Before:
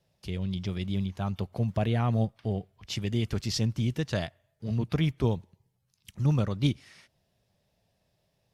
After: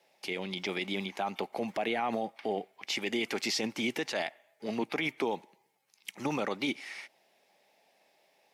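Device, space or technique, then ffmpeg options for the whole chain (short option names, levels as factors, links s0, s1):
laptop speaker: -af "highpass=f=280:w=0.5412,highpass=f=280:w=1.3066,equalizer=f=820:t=o:w=0.28:g=9.5,equalizer=f=2200:t=o:w=0.5:g=10,alimiter=level_in=1.58:limit=0.0631:level=0:latency=1:release=36,volume=0.631,volume=2"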